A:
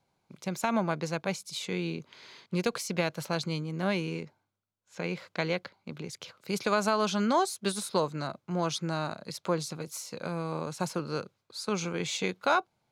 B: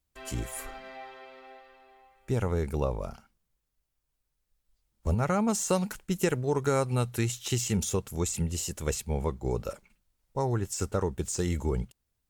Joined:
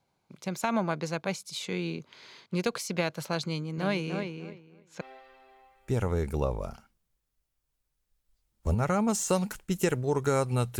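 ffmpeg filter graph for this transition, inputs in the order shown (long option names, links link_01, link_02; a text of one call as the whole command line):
ffmpeg -i cue0.wav -i cue1.wav -filter_complex "[0:a]asettb=1/sr,asplit=3[link_01][link_02][link_03];[link_01]atrim=end=3.484[link_04];[link_02]atrim=start=3.48:end=5.01,asetpts=PTS-STARTPTS,afade=type=in:duration=0.004:curve=qsin,afade=type=out:start_time=1.526:duration=0.004:curve=qsin,asplit=2[link_05][link_06];[link_06]adelay=298,lowpass=frequency=3200:poles=1,volume=-6dB,asplit=2[link_07][link_08];[link_08]adelay=298,lowpass=frequency=3200:poles=1,volume=0.18,asplit=2[link_09][link_10];[link_10]adelay=298,lowpass=frequency=3200:poles=1,volume=0.18[link_11];[link_05][link_07][link_09][link_11]amix=inputs=4:normalize=0,atrim=end_sample=67473[link_12];[link_03]atrim=start=5.006[link_13];[link_04][link_12]acrossfade=duration=0.004:curve1=hsin:curve2=qsin[link_14];[link_14][link_13]acrossfade=duration=0.004:curve1=qsin:curve2=hsin,apad=whole_dur=10.79,atrim=end=10.79,atrim=end=5.012[link_15];[1:a]atrim=start=1.408:end=7.19[link_16];[link_15][link_16]acrossfade=duration=0.004:curve1=hsin:curve2=hsin" out.wav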